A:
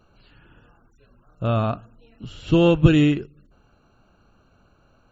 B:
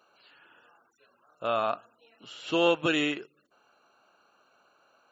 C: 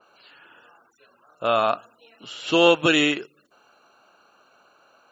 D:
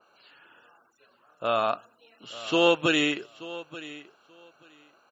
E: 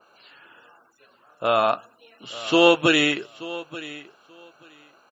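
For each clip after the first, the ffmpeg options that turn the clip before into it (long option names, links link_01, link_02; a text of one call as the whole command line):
ffmpeg -i in.wav -af "highpass=600" out.wav
ffmpeg -i in.wav -af "adynamicequalizer=threshold=0.00708:dfrequency=3100:dqfactor=0.7:tfrequency=3100:tqfactor=0.7:attack=5:release=100:ratio=0.375:range=2:mode=boostabove:tftype=highshelf,volume=7dB" out.wav
ffmpeg -i in.wav -af "aecho=1:1:882|1764:0.141|0.0226,volume=-4.5dB" out.wav
ffmpeg -i in.wav -filter_complex "[0:a]asplit=2[link_01][link_02];[link_02]adelay=15,volume=-13dB[link_03];[link_01][link_03]amix=inputs=2:normalize=0,volume=5dB" out.wav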